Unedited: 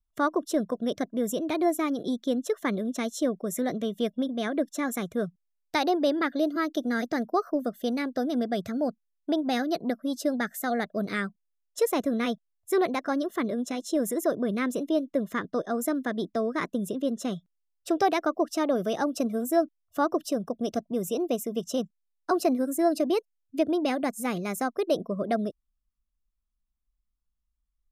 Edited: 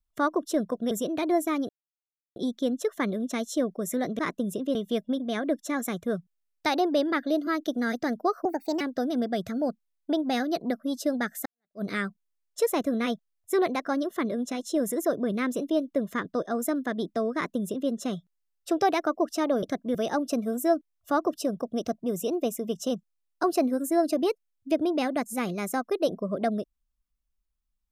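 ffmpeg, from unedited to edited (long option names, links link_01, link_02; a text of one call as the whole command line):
ffmpeg -i in.wav -filter_complex "[0:a]asplit=10[link_01][link_02][link_03][link_04][link_05][link_06][link_07][link_08][link_09][link_10];[link_01]atrim=end=0.912[link_11];[link_02]atrim=start=1.228:end=2.01,asetpts=PTS-STARTPTS,afade=type=out:start_time=0.778:duration=0.004:curve=hsin,apad=pad_dur=0.67[link_12];[link_03]atrim=start=2.01:end=3.842,asetpts=PTS-STARTPTS,afade=type=in:duration=0.004:curve=hsin[link_13];[link_04]atrim=start=16.538:end=17.102[link_14];[link_05]atrim=start=3.838:end=7.544[link_15];[link_06]atrim=start=7.54:end=8,asetpts=PTS-STARTPTS,asetrate=56889,aresample=44100[link_16];[link_07]atrim=start=7.996:end=10.65,asetpts=PTS-STARTPTS,afade=type=out:start_time=2.65:duration=0.004:curve=hsin[link_17];[link_08]atrim=start=10.65:end=18.822,asetpts=PTS-STARTPTS,afade=type=in:duration=0.37:curve=exp[link_18];[link_09]atrim=start=0.908:end=1.232[link_19];[link_10]atrim=start=18.818[link_20];[link_12][link_13]concat=n=2:v=0:a=1[link_21];[link_11][link_21]acrossfade=duration=0.004:curve1=hsin:curve2=hsin[link_22];[link_22][link_14]acrossfade=duration=0.004:curve1=hsin:curve2=hsin[link_23];[link_23][link_15]acrossfade=duration=0.004:curve1=hsin:curve2=hsin[link_24];[link_24][link_16]acrossfade=duration=0.004:curve1=hsin:curve2=hsin[link_25];[link_17][link_18]concat=n=2:v=0:a=1[link_26];[link_25][link_26]acrossfade=duration=0.004:curve1=hsin:curve2=hsin[link_27];[link_27][link_19]acrossfade=duration=0.004:curve1=hsin:curve2=hsin[link_28];[link_28][link_20]acrossfade=duration=0.004:curve1=hsin:curve2=hsin" out.wav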